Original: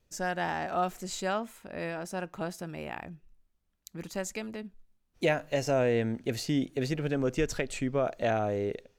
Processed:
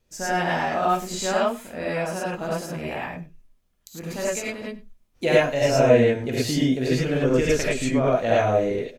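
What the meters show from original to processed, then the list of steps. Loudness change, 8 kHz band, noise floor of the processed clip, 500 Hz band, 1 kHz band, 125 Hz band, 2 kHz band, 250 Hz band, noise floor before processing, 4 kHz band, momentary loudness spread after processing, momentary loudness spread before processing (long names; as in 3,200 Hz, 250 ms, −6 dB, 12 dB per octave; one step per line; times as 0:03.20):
+9.0 dB, +9.0 dB, −66 dBFS, +9.5 dB, +8.5 dB, +8.0 dB, +8.5 dB, +8.0 dB, −74 dBFS, +9.0 dB, 12 LU, 12 LU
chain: on a send: single-tap delay 97 ms −19.5 dB
on the sum: reverb whose tail is shaped and stops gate 130 ms rising, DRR −6.5 dB
level +1.5 dB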